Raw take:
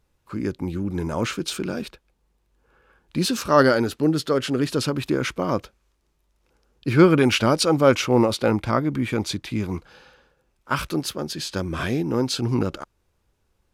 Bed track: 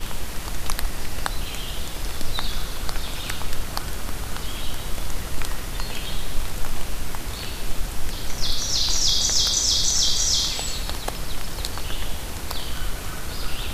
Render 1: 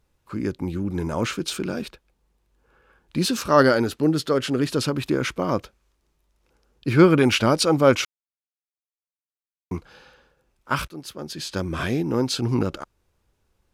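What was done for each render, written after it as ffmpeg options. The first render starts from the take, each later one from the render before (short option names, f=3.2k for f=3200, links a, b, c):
-filter_complex "[0:a]asplit=4[a][b][c][d];[a]atrim=end=8.05,asetpts=PTS-STARTPTS,afade=t=out:st=8.046:d=0.004:c=hsin[e];[b]atrim=start=8.05:end=9.71,asetpts=PTS-STARTPTS,volume=0[f];[c]atrim=start=9.71:end=10.88,asetpts=PTS-STARTPTS,afade=t=in:d=0.004:c=hsin,afade=t=out:st=1.166:d=0.004:c=hsin:silence=0.125893[g];[d]atrim=start=10.88,asetpts=PTS-STARTPTS,afade=t=in:d=0.72:silence=0.125893[h];[e][f][g][h]concat=n=4:v=0:a=1"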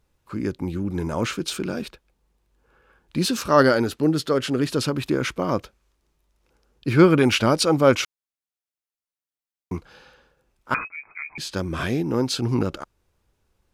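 -filter_complex "[0:a]asettb=1/sr,asplit=3[a][b][c];[a]atrim=end=10.744[d];[b]atrim=start=10.74:end=11.38,asetpts=PTS-STARTPTS,afade=t=in:d=0.004:c=qsin,afade=t=out:st=0.636:d=0.004:c=qsin,lowpass=f=2.2k:t=q:w=0.5098,lowpass=f=2.2k:t=q:w=0.6013,lowpass=f=2.2k:t=q:w=0.9,lowpass=f=2.2k:t=q:w=2.563,afreqshift=-2600[e];[c]atrim=start=11.376[f];[d][e]acrossfade=d=0.004:c1=hsin:c2=qsin[g];[g][f]acrossfade=d=0.004:c1=qsin:c2=hsin"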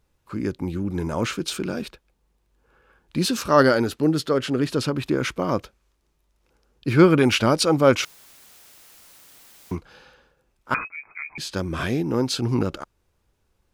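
-filter_complex "[0:a]asettb=1/sr,asplit=3[a][b][c];[a]atrim=end=4.274[d];[b]atrim=start=4.27:end=5.18,asetpts=PTS-STARTPTS,afade=t=in:d=0.004:c=qsin,afade=t=out:st=0.906:d=0.004:c=qsin,highshelf=f=4.7k:g=-4.5[e];[c]atrim=start=5.176[f];[d][e]acrossfade=d=0.004:c1=hsin:c2=qsin[g];[g][f]acrossfade=d=0.004:c1=qsin:c2=hsin,asettb=1/sr,asplit=3[h][i][j];[h]atrim=end=8.034[k];[i]atrim=start=8.03:end=9.75,asetpts=PTS-STARTPTS,afade=t=in:d=0.004:c=qsin,afade=t=out:st=1.716:d=0.004:c=qsin,aeval=exprs='val(0)+0.5*0.00944*sgn(val(0))':c=same[l];[j]atrim=start=9.746[m];[k][l]acrossfade=d=0.004:c1=hsin:c2=qsin[n];[n][m]acrossfade=d=0.004:c1=qsin:c2=hsin"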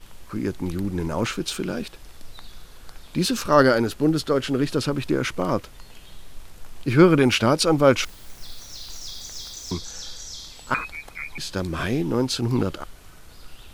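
-filter_complex "[1:a]volume=-16.5dB[a];[0:a][a]amix=inputs=2:normalize=0"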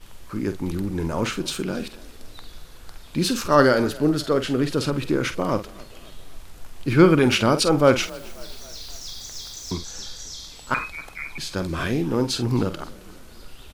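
-filter_complex "[0:a]asplit=2[a][b];[b]adelay=48,volume=-11dB[c];[a][c]amix=inputs=2:normalize=0,asplit=5[d][e][f][g][h];[e]adelay=268,afreqshift=34,volume=-22dB[i];[f]adelay=536,afreqshift=68,volume=-27.5dB[j];[g]adelay=804,afreqshift=102,volume=-33dB[k];[h]adelay=1072,afreqshift=136,volume=-38.5dB[l];[d][i][j][k][l]amix=inputs=5:normalize=0"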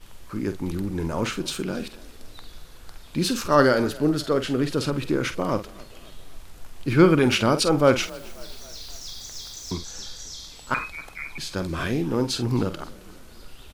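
-af "volume=-1.5dB"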